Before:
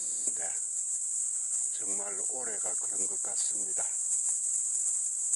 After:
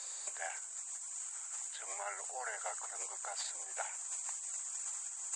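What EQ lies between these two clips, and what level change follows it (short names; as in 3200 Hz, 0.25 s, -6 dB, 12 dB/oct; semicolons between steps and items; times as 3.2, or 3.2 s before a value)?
HPF 730 Hz 24 dB/oct; air absorption 190 m; +7.0 dB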